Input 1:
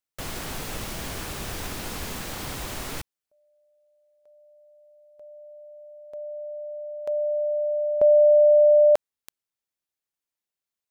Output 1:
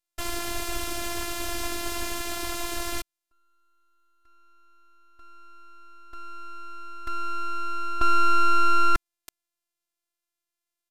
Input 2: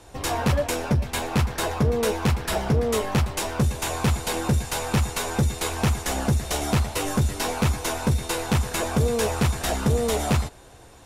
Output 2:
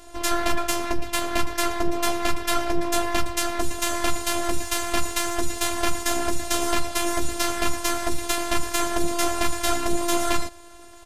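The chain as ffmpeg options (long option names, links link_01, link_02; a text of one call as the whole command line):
ffmpeg -i in.wav -af "afftfilt=real='hypot(re,im)*cos(PI*b)':imag='0':win_size=512:overlap=0.75,aeval=exprs='abs(val(0))':channel_layout=same,aresample=32000,aresample=44100,volume=6.5dB" out.wav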